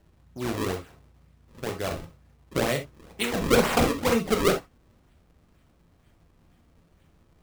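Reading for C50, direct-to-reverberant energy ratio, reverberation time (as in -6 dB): 10.0 dB, 4.0 dB, no single decay rate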